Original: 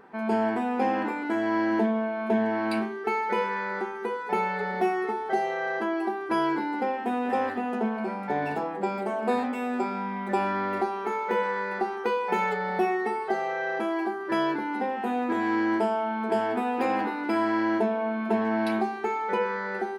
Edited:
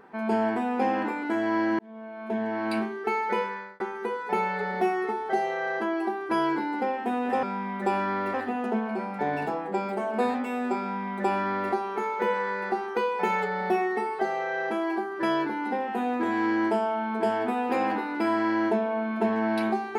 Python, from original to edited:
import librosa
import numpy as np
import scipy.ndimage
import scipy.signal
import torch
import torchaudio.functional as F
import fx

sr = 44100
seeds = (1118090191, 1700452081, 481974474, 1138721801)

y = fx.edit(x, sr, fx.fade_in_span(start_s=1.79, length_s=1.02),
    fx.fade_out_span(start_s=3.34, length_s=0.46),
    fx.duplicate(start_s=9.9, length_s=0.91, to_s=7.43), tone=tone)